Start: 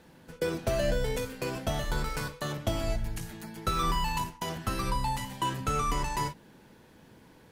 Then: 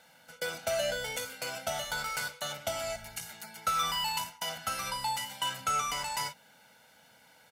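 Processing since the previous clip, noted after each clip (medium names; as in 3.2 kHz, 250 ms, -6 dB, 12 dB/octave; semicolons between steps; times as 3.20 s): high-pass 1.4 kHz 6 dB/octave; comb 1.4 ms, depth 81%; trim +2 dB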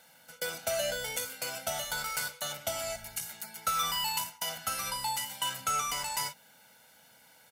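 treble shelf 7.6 kHz +10 dB; trim -1.5 dB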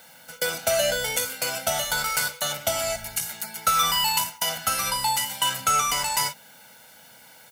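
added noise violet -69 dBFS; trim +9 dB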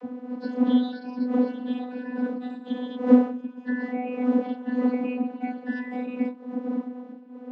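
spectrum inverted on a logarithmic axis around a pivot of 1.5 kHz; wind noise 350 Hz -18 dBFS; vocoder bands 32, saw 249 Hz; trim -8 dB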